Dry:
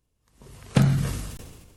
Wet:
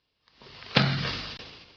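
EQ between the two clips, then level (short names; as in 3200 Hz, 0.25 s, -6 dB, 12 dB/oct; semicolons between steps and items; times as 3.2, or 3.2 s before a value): steep low-pass 5000 Hz 72 dB/oct; tilt +4 dB/oct; +4.0 dB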